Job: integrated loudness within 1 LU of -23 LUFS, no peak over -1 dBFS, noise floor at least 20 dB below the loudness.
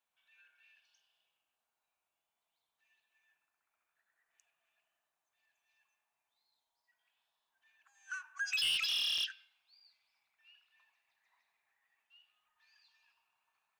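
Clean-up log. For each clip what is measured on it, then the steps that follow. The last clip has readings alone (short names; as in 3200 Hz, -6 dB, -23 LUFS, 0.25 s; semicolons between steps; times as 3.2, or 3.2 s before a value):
clipped 0.3%; flat tops at -29.5 dBFS; dropouts 1; longest dropout 4.1 ms; loudness -33.0 LUFS; peak -29.5 dBFS; loudness target -23.0 LUFS
-> clip repair -29.5 dBFS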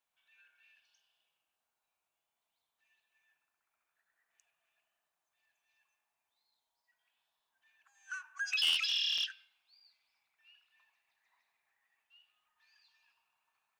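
clipped 0.0%; dropouts 1; longest dropout 4.1 ms
-> interpolate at 9.18, 4.1 ms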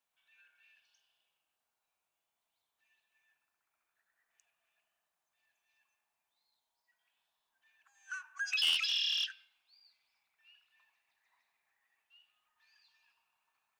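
dropouts 0; loudness -32.0 LUFS; peak -20.5 dBFS; loudness target -23.0 LUFS
-> gain +9 dB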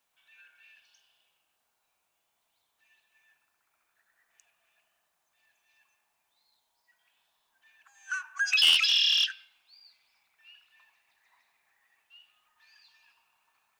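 loudness -23.0 LUFS; peak -11.5 dBFS; noise floor -78 dBFS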